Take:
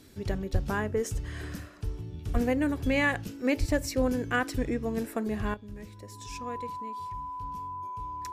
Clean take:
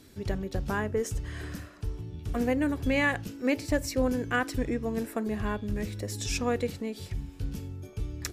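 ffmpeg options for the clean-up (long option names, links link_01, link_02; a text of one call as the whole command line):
ffmpeg -i in.wav -filter_complex "[0:a]bandreject=frequency=1000:width=30,asplit=3[link_01][link_02][link_03];[link_01]afade=type=out:start_time=0.52:duration=0.02[link_04];[link_02]highpass=frequency=140:width=0.5412,highpass=frequency=140:width=1.3066,afade=type=in:start_time=0.52:duration=0.02,afade=type=out:start_time=0.64:duration=0.02[link_05];[link_03]afade=type=in:start_time=0.64:duration=0.02[link_06];[link_04][link_05][link_06]amix=inputs=3:normalize=0,asplit=3[link_07][link_08][link_09];[link_07]afade=type=out:start_time=2.33:duration=0.02[link_10];[link_08]highpass=frequency=140:width=0.5412,highpass=frequency=140:width=1.3066,afade=type=in:start_time=2.33:duration=0.02,afade=type=out:start_time=2.45:duration=0.02[link_11];[link_09]afade=type=in:start_time=2.45:duration=0.02[link_12];[link_10][link_11][link_12]amix=inputs=3:normalize=0,asplit=3[link_13][link_14][link_15];[link_13]afade=type=out:start_time=3.59:duration=0.02[link_16];[link_14]highpass=frequency=140:width=0.5412,highpass=frequency=140:width=1.3066,afade=type=in:start_time=3.59:duration=0.02,afade=type=out:start_time=3.71:duration=0.02[link_17];[link_15]afade=type=in:start_time=3.71:duration=0.02[link_18];[link_16][link_17][link_18]amix=inputs=3:normalize=0,asetnsamples=nb_out_samples=441:pad=0,asendcmd='5.54 volume volume 11dB',volume=0dB" out.wav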